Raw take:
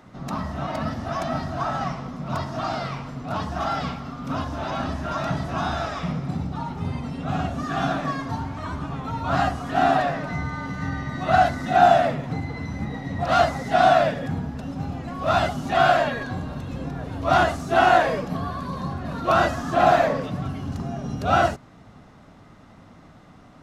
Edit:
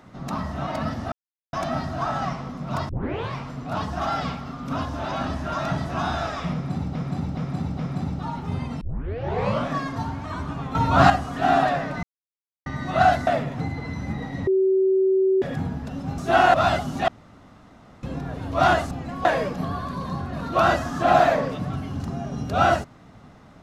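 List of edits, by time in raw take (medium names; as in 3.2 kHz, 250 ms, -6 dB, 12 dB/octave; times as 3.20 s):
1.12 s: insert silence 0.41 s
2.48 s: tape start 0.47 s
6.12–6.54 s: loop, 4 plays
7.14 s: tape start 0.91 s
9.08–9.43 s: gain +7.5 dB
10.36–10.99 s: mute
11.60–11.99 s: delete
13.19–14.14 s: bleep 381 Hz -16 dBFS
14.90–15.24 s: swap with 17.61–17.97 s
15.78–16.73 s: room tone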